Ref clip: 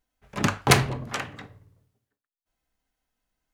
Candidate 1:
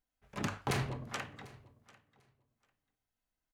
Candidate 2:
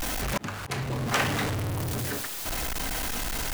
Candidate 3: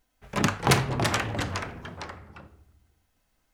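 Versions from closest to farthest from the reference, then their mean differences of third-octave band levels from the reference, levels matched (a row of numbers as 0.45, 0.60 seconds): 1, 3, 2; 4.5, 8.5, 14.5 decibels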